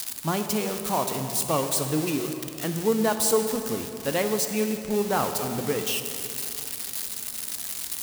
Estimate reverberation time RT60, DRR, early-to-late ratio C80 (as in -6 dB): 2.9 s, 6.0 dB, 8.0 dB